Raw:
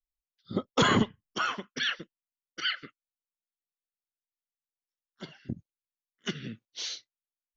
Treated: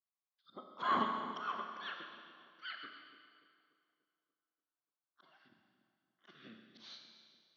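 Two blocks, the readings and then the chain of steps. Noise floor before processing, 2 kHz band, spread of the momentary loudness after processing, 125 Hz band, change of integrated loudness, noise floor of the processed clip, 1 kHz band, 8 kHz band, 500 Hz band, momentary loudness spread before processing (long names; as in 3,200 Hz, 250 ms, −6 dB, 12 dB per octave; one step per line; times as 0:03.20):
below −85 dBFS, −12.5 dB, 23 LU, −24.0 dB, −8.5 dB, below −85 dBFS, −4.0 dB, can't be measured, −14.5 dB, 18 LU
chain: volume swells 288 ms
loudspeaker in its box 410–4,000 Hz, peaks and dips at 450 Hz −9 dB, 710 Hz +5 dB, 1,100 Hz +9 dB, 2,000 Hz −6 dB, 2,800 Hz −8 dB
echo with a time of its own for lows and highs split 960 Hz, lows 291 ms, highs 134 ms, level −13 dB
four-comb reverb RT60 1.9 s, combs from 28 ms, DRR 4 dB
level −3.5 dB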